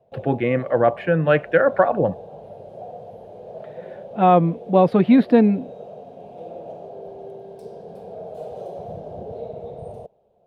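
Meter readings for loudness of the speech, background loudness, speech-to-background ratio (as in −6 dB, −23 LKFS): −18.5 LKFS, −37.5 LKFS, 19.0 dB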